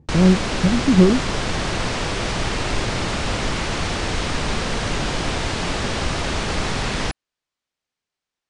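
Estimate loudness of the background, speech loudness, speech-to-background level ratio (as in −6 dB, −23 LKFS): −23.5 LKFS, −17.5 LKFS, 6.0 dB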